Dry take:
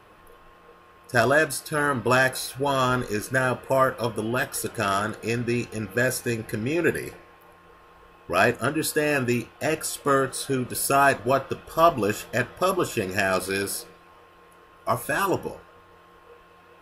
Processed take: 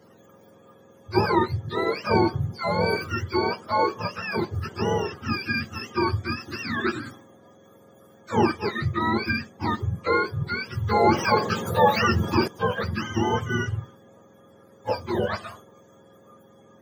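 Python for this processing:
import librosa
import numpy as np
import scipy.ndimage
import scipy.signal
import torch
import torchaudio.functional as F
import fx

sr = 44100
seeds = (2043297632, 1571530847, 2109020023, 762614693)

y = fx.octave_mirror(x, sr, pivot_hz=760.0)
y = fx.env_flatten(y, sr, amount_pct=50, at=(11.05, 12.48))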